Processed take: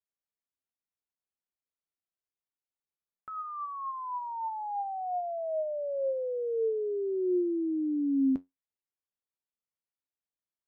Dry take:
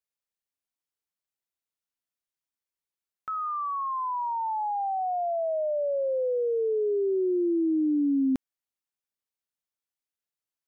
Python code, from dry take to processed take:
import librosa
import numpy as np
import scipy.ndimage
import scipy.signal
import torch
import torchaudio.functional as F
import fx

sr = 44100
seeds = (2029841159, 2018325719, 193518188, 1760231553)

y = fx.lowpass(x, sr, hz=1100.0, slope=6)
y = fx.comb_fb(y, sr, f0_hz=90.0, decay_s=0.16, harmonics='all', damping=0.0, mix_pct=60)